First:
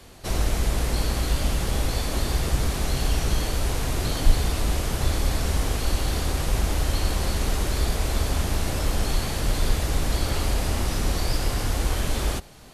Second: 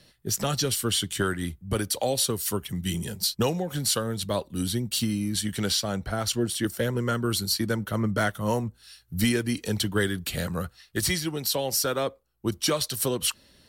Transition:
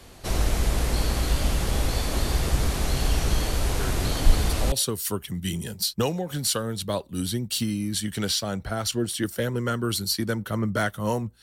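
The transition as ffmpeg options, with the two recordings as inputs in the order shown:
-filter_complex "[1:a]asplit=2[a][b];[0:a]apad=whole_dur=11.42,atrim=end=11.42,atrim=end=4.722[c];[b]atrim=start=2.128:end=8.83[d];[a]atrim=start=1.2:end=2.13,asetpts=PTS-STARTPTS,volume=-9.5dB,afade=t=in:d=0.004:c=hsin,afade=t=out:st=0.926:d=0.004:c=hsin,adelay=3790[e];[c][d]acrossfade=d=0.004:c1=hsin:c2=hsin[f];[f][e]amix=inputs=2:normalize=0"

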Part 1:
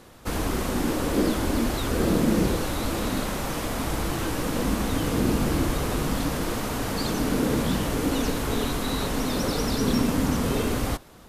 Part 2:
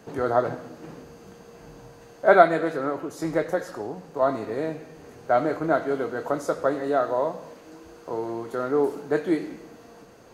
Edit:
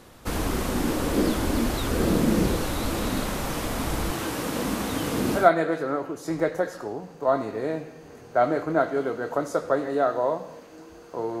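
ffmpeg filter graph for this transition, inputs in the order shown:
-filter_complex "[0:a]asettb=1/sr,asplit=3[a][b][c];[a]atrim=end=4.114[d];[b]atrim=start=4.11:end=5.51,asetpts=PTS-STARTPTS,afade=t=in:d=0.004:c=qsin,afade=t=out:st=1.396:d=0.004:c=qsin,highpass=f=180:p=1[e];[c]atrim=start=5.506[f];[d][e]acrossfade=d=0.004:c1=hsin:c2=qsin[g];[g][f]acrossfade=d=0.004:c1=qsin:c2=hsin,apad=whole_dur=11.4,atrim=end=11.4,atrim=end=5.51,asetpts=PTS-STARTPTS[h];[1:a]atrim=start=2.27:end=8.34,asetpts=PTS-STARTPTS[i];[h][i]acrossfade=d=0.18:c1=tri:c2=tri"

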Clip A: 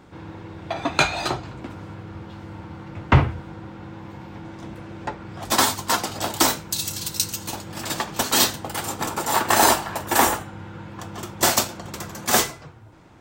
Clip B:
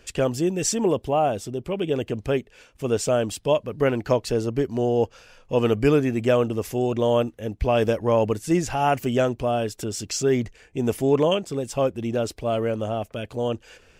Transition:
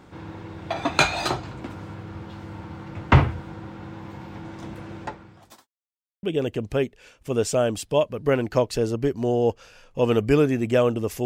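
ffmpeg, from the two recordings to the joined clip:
-filter_complex "[0:a]apad=whole_dur=11.25,atrim=end=11.25,asplit=2[a][b];[a]atrim=end=5.68,asetpts=PTS-STARTPTS,afade=t=out:st=4.95:d=0.73:c=qua[c];[b]atrim=start=5.68:end=6.23,asetpts=PTS-STARTPTS,volume=0[d];[1:a]atrim=start=1.77:end=6.79,asetpts=PTS-STARTPTS,afade=t=in:d=0.004:c=hsin[e];[c][d][e]concat=n=3:v=0:a=1"

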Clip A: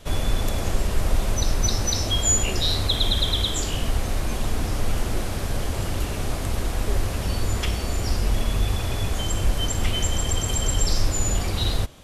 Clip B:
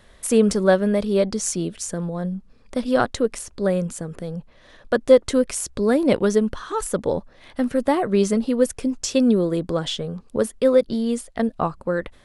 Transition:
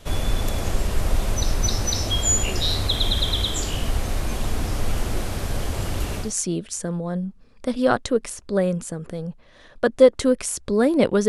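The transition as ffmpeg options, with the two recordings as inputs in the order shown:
-filter_complex "[0:a]apad=whole_dur=11.28,atrim=end=11.28,atrim=end=6.34,asetpts=PTS-STARTPTS[a];[1:a]atrim=start=1.25:end=6.37,asetpts=PTS-STARTPTS[b];[a][b]acrossfade=d=0.18:c1=tri:c2=tri"

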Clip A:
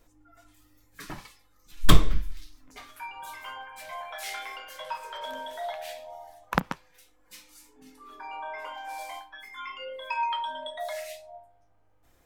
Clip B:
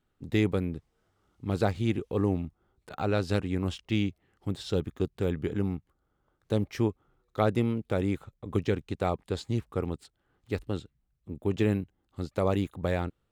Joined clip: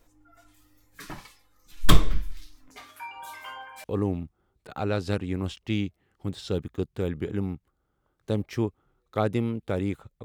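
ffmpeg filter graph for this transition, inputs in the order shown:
-filter_complex "[0:a]asettb=1/sr,asplit=3[a][b][c];[a]atrim=end=2.724[d];[b]atrim=start=2.72:end=3.84,asetpts=PTS-STARTPTS,afade=t=in:d=0.004:c=qsin,afade=t=out:st=1.116:d=0.004:c=qsin,highpass=56[e];[c]atrim=start=3.836[f];[d][e]acrossfade=d=0.004:c1=hsin:c2=qsin[g];[g][f]acrossfade=d=0.004:c1=qsin:c2=hsin,apad=whole_dur=10.24,atrim=end=10.24,atrim=end=3.842[h];[1:a]atrim=start=2.058:end=8.46[i];[h][i]acrossfade=d=0.004:c1=hsin:c2=hsin"

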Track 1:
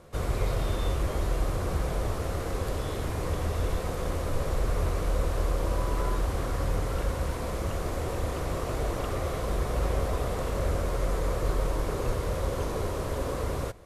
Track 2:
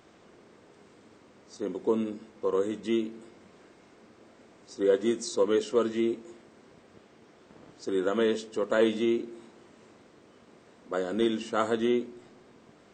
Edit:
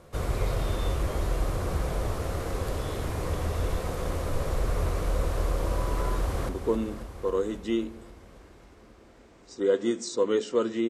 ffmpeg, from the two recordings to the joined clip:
-filter_complex "[0:a]apad=whole_dur=10.89,atrim=end=10.89,atrim=end=6.492[a];[1:a]atrim=start=1.688:end=6.09[b];[a][b]acrossfade=d=0.004:c1=hsin:c2=hsin,asplit=2[c][d];[d]afade=t=in:st=6.19:d=0.01,afade=t=out:st=6.49:d=0.01,aecho=0:1:270|540|810|1080|1350|1620|1890|2160|2430|2700|2970|3240:0.398107|0.29858|0.223935|0.167951|0.125964|0.0944727|0.0708545|0.0531409|0.0398557|0.0298918|0.0224188|0.0168141[e];[c][e]amix=inputs=2:normalize=0"

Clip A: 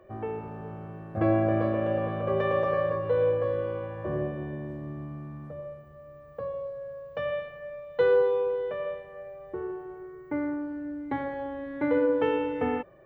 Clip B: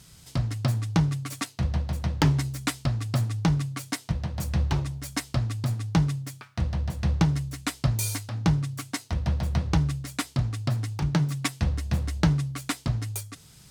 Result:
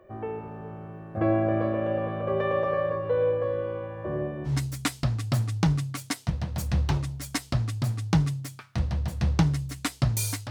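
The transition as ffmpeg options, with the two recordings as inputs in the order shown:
-filter_complex "[0:a]apad=whole_dur=10.5,atrim=end=10.5,atrim=end=4.54,asetpts=PTS-STARTPTS[a];[1:a]atrim=start=2.26:end=8.32,asetpts=PTS-STARTPTS[b];[a][b]acrossfade=d=0.1:c1=tri:c2=tri"

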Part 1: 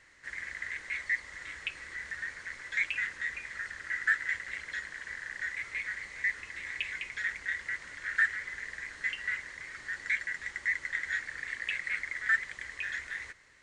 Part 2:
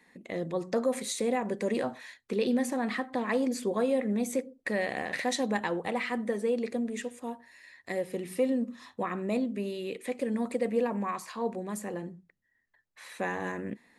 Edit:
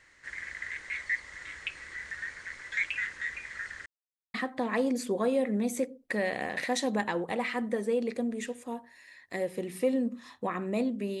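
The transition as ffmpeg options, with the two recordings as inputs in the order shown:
-filter_complex "[0:a]apad=whole_dur=11.2,atrim=end=11.2,asplit=2[a][b];[a]atrim=end=3.86,asetpts=PTS-STARTPTS,afade=t=out:st=3.856:d=0.004:c=hsin[c];[b]atrim=start=3.86:end=4.34,asetpts=PTS-STARTPTS,volume=0[d];[1:a]atrim=start=2.9:end=9.76,asetpts=PTS-STARTPTS,afade=t=in:d=0.004:c=hsin[e];[c][d][e]concat=n=3:v=0:a=1"

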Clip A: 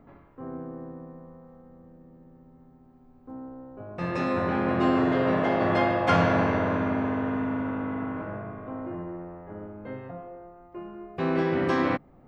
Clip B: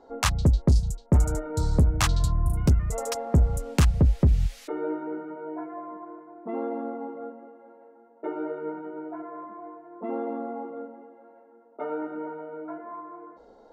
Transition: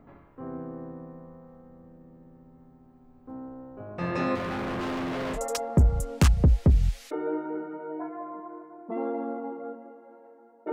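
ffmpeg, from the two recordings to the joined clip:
-filter_complex "[0:a]asettb=1/sr,asplit=3[a][b][c];[a]atrim=end=4.354[d];[b]atrim=start=4.35:end=5.4,asetpts=PTS-STARTPTS,afade=t=in:d=0.004:c=qsin,afade=t=out:st=1.046:d=0.004:c=qsin,volume=29.5dB,asoftclip=hard,volume=-29.5dB[e];[c]atrim=start=5.396[f];[d][e]acrossfade=d=0.004:c1=hsin:c2=qsin[g];[g][f]acrossfade=d=0.004:c1=qsin:c2=hsin,apad=whole_dur=10.72,atrim=end=10.72,atrim=end=5.4,asetpts=PTS-STARTPTS[h];[1:a]atrim=start=2.89:end=8.29,asetpts=PTS-STARTPTS[i];[h][i]acrossfade=d=0.08:c1=tri:c2=tri"

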